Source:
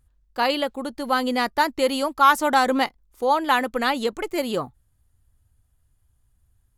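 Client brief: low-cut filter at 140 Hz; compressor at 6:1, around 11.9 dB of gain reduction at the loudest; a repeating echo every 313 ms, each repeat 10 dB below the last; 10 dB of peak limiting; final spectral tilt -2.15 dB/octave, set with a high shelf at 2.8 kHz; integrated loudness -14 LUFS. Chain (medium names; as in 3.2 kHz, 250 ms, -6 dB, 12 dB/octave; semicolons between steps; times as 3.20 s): high-pass 140 Hz; treble shelf 2.8 kHz -5.5 dB; compression 6:1, threshold -24 dBFS; peak limiter -24.5 dBFS; feedback delay 313 ms, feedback 32%, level -10 dB; trim +20 dB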